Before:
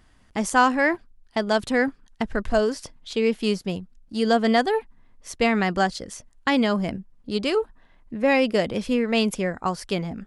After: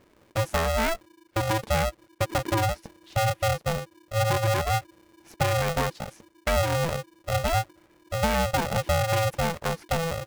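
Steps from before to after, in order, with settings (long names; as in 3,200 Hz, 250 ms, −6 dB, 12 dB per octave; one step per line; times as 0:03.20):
octave-band graphic EQ 125/250/500/1,000/2,000/4,000/8,000 Hz +9/+8/+7/−6/+5/−7/−11 dB
downward compressor, threshold −14 dBFS, peak gain reduction 7.5 dB
ring modulator with a square carrier 330 Hz
level −6.5 dB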